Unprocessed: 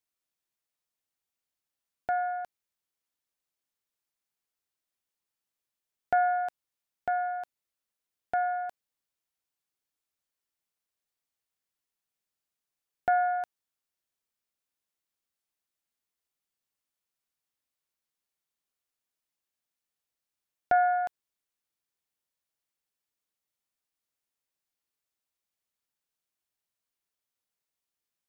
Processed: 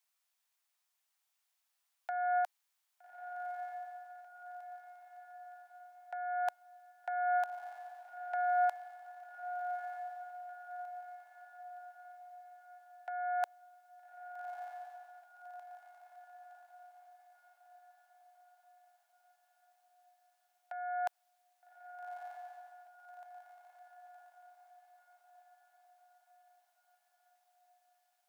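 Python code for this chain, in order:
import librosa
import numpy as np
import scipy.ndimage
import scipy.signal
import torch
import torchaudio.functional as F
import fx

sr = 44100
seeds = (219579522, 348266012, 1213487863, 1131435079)

p1 = scipy.signal.sosfilt(scipy.signal.butter(6, 650.0, 'highpass', fs=sr, output='sos'), x)
p2 = fx.over_compress(p1, sr, threshold_db=-35.0, ratio=-1.0)
y = p2 + fx.echo_diffused(p2, sr, ms=1241, feedback_pct=50, wet_db=-7.5, dry=0)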